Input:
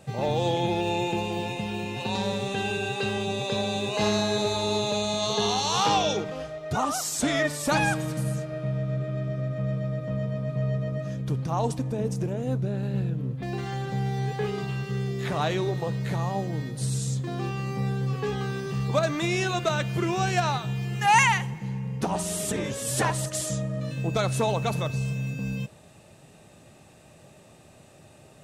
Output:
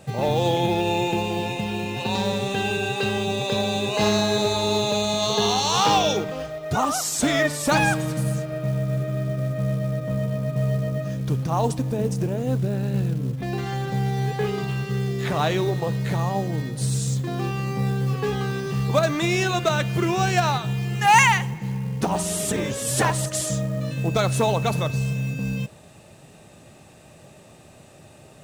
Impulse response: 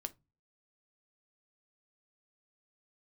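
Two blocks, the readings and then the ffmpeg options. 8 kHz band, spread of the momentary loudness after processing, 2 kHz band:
+4.0 dB, 7 LU, +4.0 dB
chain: -af "acrusher=bits=7:mode=log:mix=0:aa=0.000001,volume=4dB"

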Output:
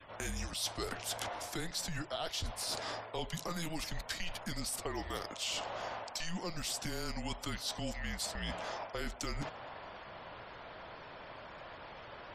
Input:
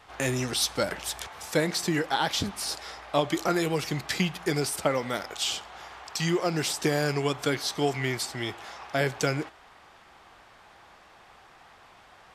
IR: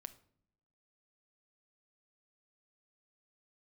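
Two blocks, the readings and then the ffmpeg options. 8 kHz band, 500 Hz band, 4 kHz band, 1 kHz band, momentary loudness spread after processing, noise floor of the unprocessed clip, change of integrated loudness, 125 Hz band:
-7.5 dB, -14.0 dB, -8.0 dB, -9.5 dB, 12 LU, -55 dBFS, -11.5 dB, -12.0 dB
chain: -filter_complex "[0:a]acrossover=split=150|3000[a][b][c];[b]acompressor=threshold=-36dB:ratio=2.5[d];[a][d][c]amix=inputs=3:normalize=0,afreqshift=-170,adynamicequalizer=threshold=0.00224:dfrequency=770:dqfactor=1.7:tfrequency=770:tqfactor=1.7:attack=5:release=100:ratio=0.375:range=3:mode=boostabove:tftype=bell,areverse,acompressor=threshold=-42dB:ratio=4,areverse,afftfilt=real='re*gte(hypot(re,im),0.000891)':imag='im*gte(hypot(re,im),0.000891)':win_size=1024:overlap=0.75,volume=4.5dB"

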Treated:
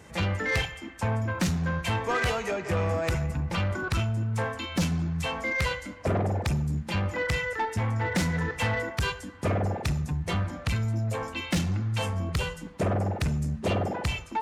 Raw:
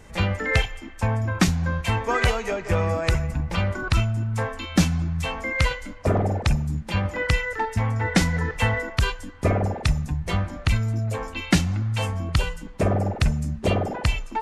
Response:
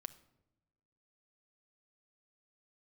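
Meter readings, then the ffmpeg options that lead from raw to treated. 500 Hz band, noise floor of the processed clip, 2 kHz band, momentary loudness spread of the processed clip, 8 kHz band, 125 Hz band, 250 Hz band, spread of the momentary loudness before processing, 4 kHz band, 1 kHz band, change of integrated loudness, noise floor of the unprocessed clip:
-3.5 dB, -43 dBFS, -3.5 dB, 3 LU, -4.5 dB, -4.5 dB, -4.5 dB, 5 LU, -4.0 dB, -3.5 dB, -4.5 dB, -39 dBFS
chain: -filter_complex "[0:a]highpass=f=64:w=0.5412,highpass=f=64:w=1.3066,asplit=2[a][b];[1:a]atrim=start_sample=2205,atrim=end_sample=6615[c];[b][c]afir=irnorm=-1:irlink=0,volume=8.5dB[d];[a][d]amix=inputs=2:normalize=0,asoftclip=type=tanh:threshold=-12dB,volume=-9dB"

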